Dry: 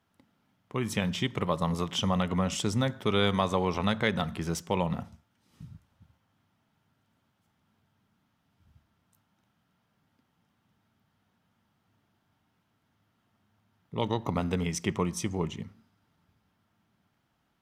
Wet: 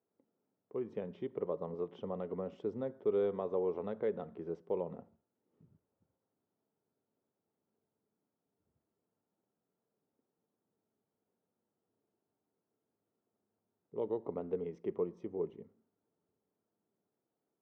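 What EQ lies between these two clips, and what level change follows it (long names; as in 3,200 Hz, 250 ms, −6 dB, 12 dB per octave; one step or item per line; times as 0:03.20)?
resonant band-pass 430 Hz, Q 3.5
high-frequency loss of the air 140 metres
0.0 dB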